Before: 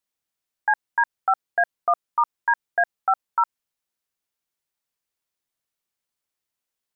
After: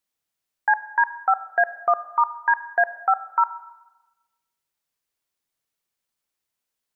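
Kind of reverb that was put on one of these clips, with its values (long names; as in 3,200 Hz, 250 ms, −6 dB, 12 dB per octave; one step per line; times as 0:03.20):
four-comb reverb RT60 1.1 s, combs from 28 ms, DRR 13.5 dB
level +1.5 dB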